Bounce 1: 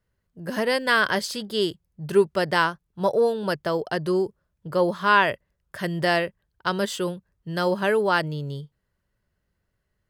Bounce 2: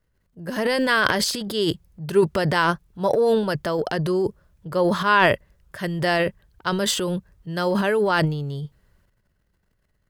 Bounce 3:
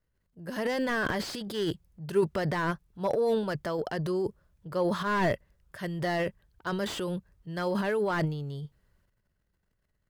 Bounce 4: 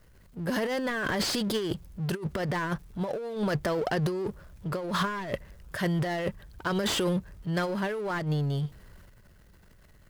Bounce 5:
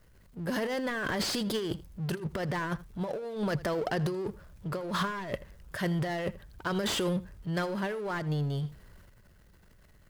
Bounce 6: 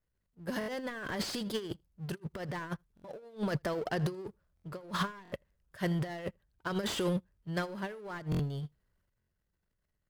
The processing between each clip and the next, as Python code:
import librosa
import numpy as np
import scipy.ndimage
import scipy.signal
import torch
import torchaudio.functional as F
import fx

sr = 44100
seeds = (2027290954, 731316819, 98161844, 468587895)

y1 = fx.low_shelf(x, sr, hz=63.0, db=8.0)
y1 = fx.transient(y1, sr, attack_db=0, sustain_db=12)
y2 = fx.slew_limit(y1, sr, full_power_hz=160.0)
y2 = y2 * librosa.db_to_amplitude(-7.5)
y3 = fx.over_compress(y2, sr, threshold_db=-32.0, ratio=-0.5)
y3 = fx.power_curve(y3, sr, exponent=0.7)
y4 = y3 + 10.0 ** (-19.0 / 20.0) * np.pad(y3, (int(81 * sr / 1000.0), 0))[:len(y3)]
y4 = y4 * librosa.db_to_amplitude(-2.5)
y5 = fx.buffer_glitch(y4, sr, at_s=(0.59, 2.95, 4.55, 5.23, 8.3, 9.19), block=1024, repeats=3)
y5 = fx.upward_expand(y5, sr, threshold_db=-43.0, expansion=2.5)